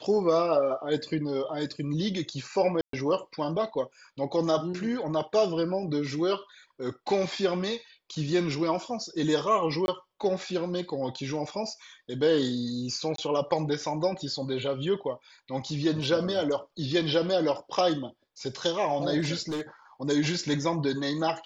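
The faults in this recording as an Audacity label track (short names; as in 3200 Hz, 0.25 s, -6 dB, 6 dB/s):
2.810000	2.930000	gap 0.123 s
9.860000	9.880000	gap 21 ms
13.160000	13.180000	gap 23 ms
19.480000	19.610000	clipped -28 dBFS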